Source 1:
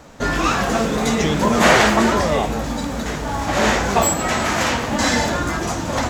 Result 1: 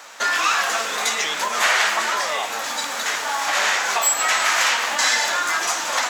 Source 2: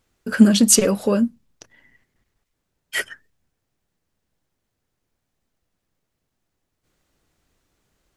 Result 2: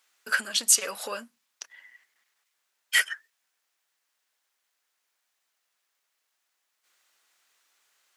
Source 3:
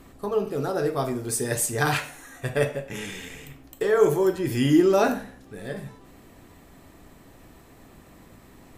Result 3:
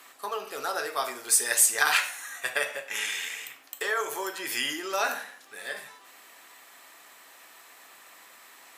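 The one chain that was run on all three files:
compression 5:1, threshold -21 dBFS; high-pass 1.2 kHz 12 dB/octave; peak normalisation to -6 dBFS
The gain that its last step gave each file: +9.5 dB, +5.0 dB, +7.0 dB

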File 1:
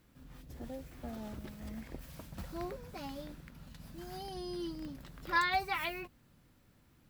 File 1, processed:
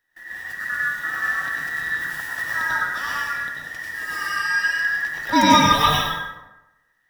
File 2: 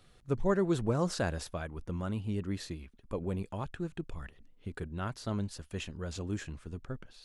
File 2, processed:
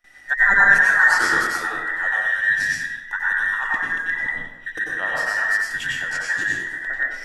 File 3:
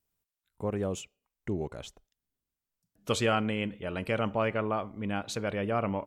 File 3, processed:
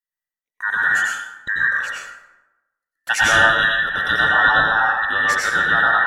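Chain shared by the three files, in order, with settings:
every band turned upside down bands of 2 kHz; band-stop 400 Hz, Q 12; gate with hold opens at -51 dBFS; peaking EQ 580 Hz -3 dB 0.69 oct; plate-style reverb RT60 1 s, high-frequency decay 0.55×, pre-delay 80 ms, DRR -4.5 dB; peak normalisation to -2 dBFS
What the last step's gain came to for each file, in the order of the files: +12.5 dB, +8.5 dB, +8.0 dB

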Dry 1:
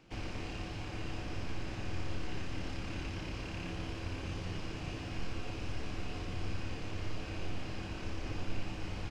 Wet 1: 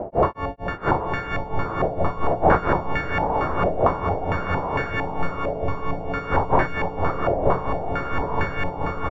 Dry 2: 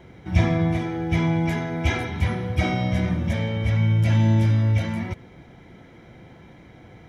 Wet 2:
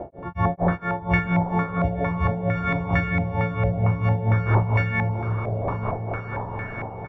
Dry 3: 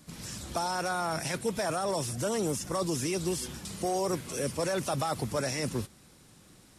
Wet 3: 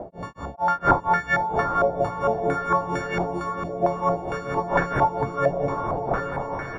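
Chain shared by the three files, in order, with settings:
partials quantised in pitch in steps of 4 st; wind noise 590 Hz -38 dBFS; on a send: early reflections 57 ms -12 dB, 79 ms -10.5 dB; on the sum: compression 2:1, threshold -28 dBFS; de-hum 49.82 Hz, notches 17; dynamic bell 240 Hz, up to -5 dB, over -46 dBFS, Q 1.7; in parallel at -9.5 dB: crossover distortion -50.5 dBFS; on the sum: tremolo 4.4 Hz, depth 100%; echo that smears into a reverb 838 ms, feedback 53%, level -6 dB; step-sequenced low-pass 4.4 Hz 660–1600 Hz; normalise loudness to -24 LUFS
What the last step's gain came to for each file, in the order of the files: +12.5 dB, +6.0 dB, +7.5 dB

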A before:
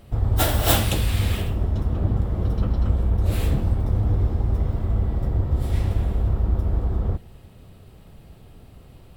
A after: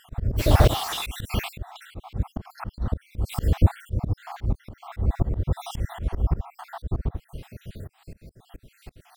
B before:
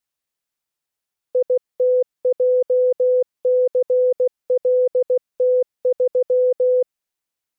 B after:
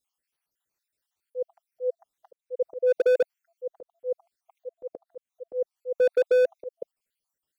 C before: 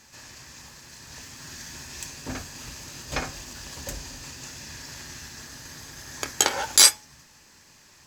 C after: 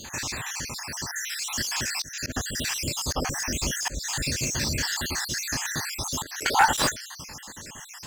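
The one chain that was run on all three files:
random holes in the spectrogram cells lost 58%; slow attack 274 ms; slew-rate limiter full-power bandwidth 51 Hz; normalise loudness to -27 LUFS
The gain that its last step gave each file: +10.0 dB, +2.5 dB, +16.5 dB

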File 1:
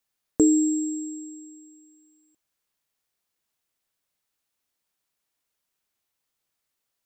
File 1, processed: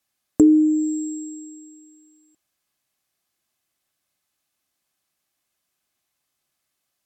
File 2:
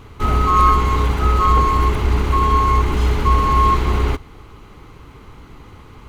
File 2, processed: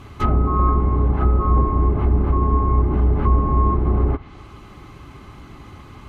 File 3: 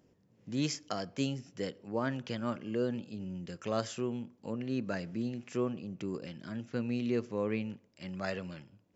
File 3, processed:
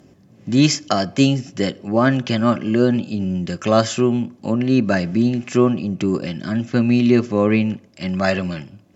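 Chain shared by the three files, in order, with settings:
comb of notches 470 Hz; low-pass that closes with the level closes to 620 Hz, closed at -14 dBFS; normalise loudness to -19 LUFS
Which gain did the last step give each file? +6.0 dB, +2.0 dB, +18.5 dB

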